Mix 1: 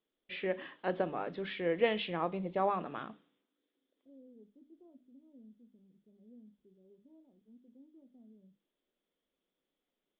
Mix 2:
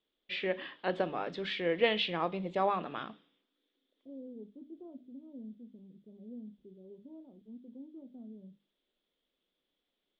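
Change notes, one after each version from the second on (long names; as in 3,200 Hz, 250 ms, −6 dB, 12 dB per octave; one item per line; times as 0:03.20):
first voice: remove high-frequency loss of the air 360 metres
second voice +10.5 dB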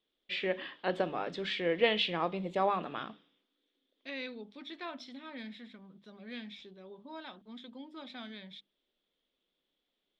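second voice: remove inverse Chebyshev low-pass filter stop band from 2,100 Hz, stop band 70 dB
master: remove high-frequency loss of the air 73 metres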